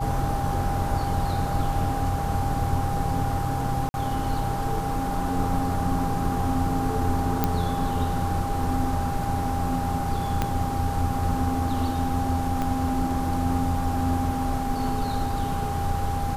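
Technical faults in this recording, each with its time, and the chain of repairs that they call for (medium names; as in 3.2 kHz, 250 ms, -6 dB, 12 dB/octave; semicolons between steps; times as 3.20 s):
whine 800 Hz -29 dBFS
3.89–3.94 s: dropout 51 ms
7.44 s: pop -7 dBFS
10.42 s: pop -10 dBFS
12.62 s: pop -15 dBFS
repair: de-click; band-stop 800 Hz, Q 30; interpolate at 3.89 s, 51 ms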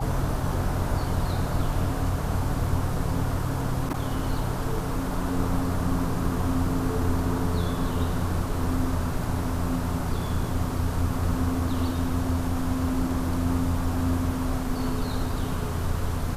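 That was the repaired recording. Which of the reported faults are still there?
10.42 s: pop
12.62 s: pop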